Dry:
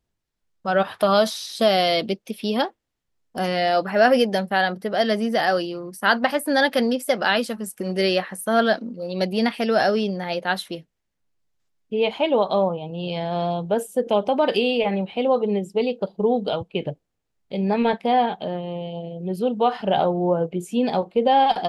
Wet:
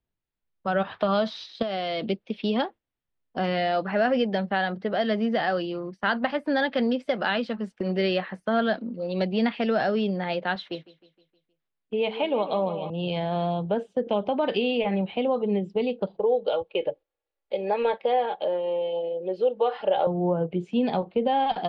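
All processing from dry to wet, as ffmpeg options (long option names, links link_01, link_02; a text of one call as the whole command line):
ffmpeg -i in.wav -filter_complex "[0:a]asettb=1/sr,asplit=3[link_01][link_02][link_03];[link_01]atrim=end=1.624[link_04];[link_02]atrim=start=1.62:end=2.08,asetpts=PTS-STARTPTS,afade=type=in:duration=0.004:curve=qsin,afade=type=out:start_time=0.456:duration=0.004:curve=qsin,highshelf=frequency=5900:width_type=q:width=1.5:gain=6,acompressor=threshold=-23dB:ratio=12:attack=3.2:release=140:knee=1:detection=peak[link_05];[link_03]atrim=start=2.076[link_06];[link_04][link_05]acrossfade=duration=0.004:curve1=hsin:curve2=qsin[link_07];[link_07][link_06]acrossfade=duration=0.004:curve1=qsin:curve2=hsin,asettb=1/sr,asplit=3[link_08][link_09][link_10];[link_08]atrim=end=10.554[link_11];[link_09]atrim=start=10.55:end=12.9,asetpts=PTS-STARTPTS,afade=type=in:duration=0.004:curve=qsin,afade=type=out:start_time=2.346:duration=0.004:curve=qsin,lowshelf=frequency=160:gain=-8.5,aecho=1:1:156|312|468|624|780:0.224|0.119|0.0629|0.0333|0.0177,atrim=end_sample=103635[link_12];[link_10]atrim=start=12.896[link_13];[link_11][link_12]acrossfade=duration=0.004:curve1=hsin:curve2=qsin[link_14];[link_14][link_13]acrossfade=duration=0.004:curve1=qsin:curve2=hsin,asettb=1/sr,asplit=3[link_15][link_16][link_17];[link_15]atrim=end=16.174[link_18];[link_16]atrim=start=16.17:end=20.07,asetpts=PTS-STARTPTS,afade=type=in:duration=0.004:curve=qsin,afade=type=out:start_time=3.896:duration=0.004:curve=qsin,lowshelf=frequency=320:width_type=q:width=3:gain=-10.5,aecho=1:1:3.6:0.54,atrim=end_sample=171990[link_19];[link_17]atrim=start=20.066[link_20];[link_18][link_19]acrossfade=duration=0.004:curve1=hsin:curve2=qsin[link_21];[link_21][link_20]acrossfade=duration=0.004:curve1=qsin:curve2=hsin,lowpass=frequency=3900:width=0.5412,lowpass=frequency=3900:width=1.3066,agate=range=-7dB:threshold=-37dB:ratio=16:detection=peak,acrossover=split=210[link_22][link_23];[link_23]acompressor=threshold=-26dB:ratio=2[link_24];[link_22][link_24]amix=inputs=2:normalize=0" out.wav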